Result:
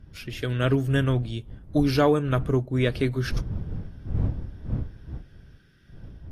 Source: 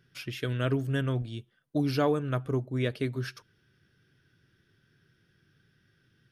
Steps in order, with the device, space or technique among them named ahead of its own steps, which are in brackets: smartphone video outdoors (wind noise 100 Hz -39 dBFS; level rider gain up to 6 dB; AAC 48 kbps 32 kHz)

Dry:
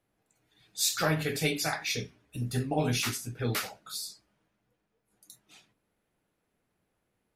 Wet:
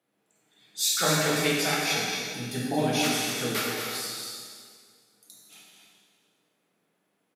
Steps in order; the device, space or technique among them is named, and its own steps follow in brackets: stadium PA (high-pass 160 Hz 24 dB/octave; peaking EQ 3.3 kHz +3.5 dB 0.26 oct; loudspeakers at several distances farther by 78 m -7 dB, 94 m -12 dB; reverberation RT60 1.9 s, pre-delay 16 ms, DRR -2.5 dB)

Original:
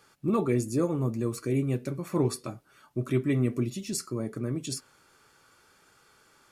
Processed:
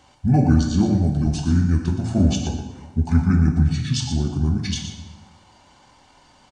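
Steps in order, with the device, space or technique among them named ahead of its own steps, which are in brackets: 0.61–1.26 s: high-pass 130 Hz 24 dB/octave; monster voice (pitch shift -7.5 st; bass shelf 100 Hz +7 dB; delay 119 ms -10 dB; reverberation RT60 1.2 s, pre-delay 6 ms, DRR 3.5 dB); trim +6 dB

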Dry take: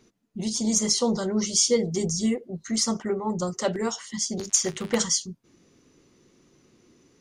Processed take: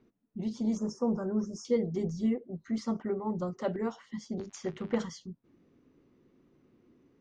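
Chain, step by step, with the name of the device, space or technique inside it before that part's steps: phone in a pocket (low-pass 3.4 kHz 12 dB/octave; peaking EQ 260 Hz +4 dB 0.35 oct; treble shelf 2 kHz -10 dB); 0.77–1.65 s: Chebyshev band-stop 1.7–5.2 kHz, order 5; trim -5.5 dB

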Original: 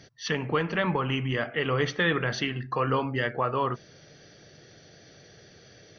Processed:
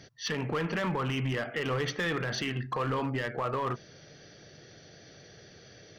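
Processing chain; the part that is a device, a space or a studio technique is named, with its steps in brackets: limiter into clipper (peak limiter -20.5 dBFS, peak gain reduction 6.5 dB; hard clipper -25 dBFS, distortion -17 dB)

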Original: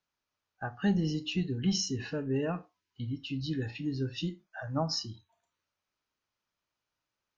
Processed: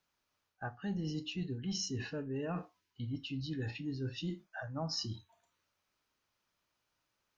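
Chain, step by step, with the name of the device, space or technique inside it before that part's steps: compression on the reversed sound (reverse; compression 5:1, threshold -41 dBFS, peak gain reduction 16 dB; reverse); trim +4.5 dB

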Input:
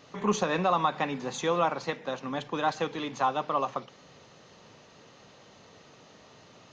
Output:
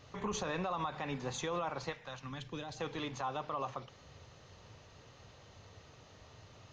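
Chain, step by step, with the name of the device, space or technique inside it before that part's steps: car stereo with a boomy subwoofer (resonant low shelf 130 Hz +13 dB, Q 1.5; peak limiter -23 dBFS, peak gain reduction 9 dB); 1.91–2.79 s: peaking EQ 240 Hz -> 1.5 kHz -12.5 dB 1.7 oct; trim -4.5 dB

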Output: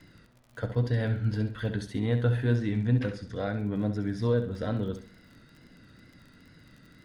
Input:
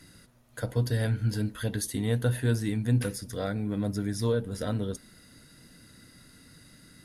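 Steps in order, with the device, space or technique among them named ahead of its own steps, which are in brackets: lo-fi chain (low-pass 3.2 kHz 12 dB/octave; wow and flutter; crackle 32 per s -45 dBFS); 2.56–3.58 s: low-pass 8.1 kHz 12 dB/octave; flutter echo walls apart 11.5 m, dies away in 0.41 s

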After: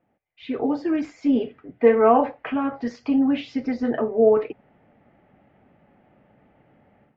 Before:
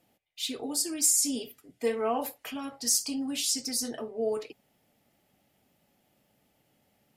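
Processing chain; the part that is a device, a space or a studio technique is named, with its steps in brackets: action camera in a waterproof case (low-pass 2 kHz 24 dB/octave; level rider gain up to 13.5 dB; AAC 64 kbps 16 kHz)

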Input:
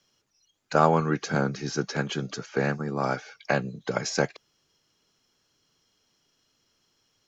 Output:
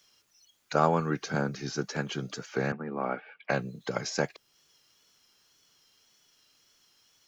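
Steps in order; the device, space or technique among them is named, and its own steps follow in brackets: noise-reduction cassette on a plain deck (tape noise reduction on one side only encoder only; wow and flutter; white noise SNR 42 dB); 2.72–3.50 s: elliptic band-pass 180–2700 Hz, stop band 40 dB; trim -4 dB

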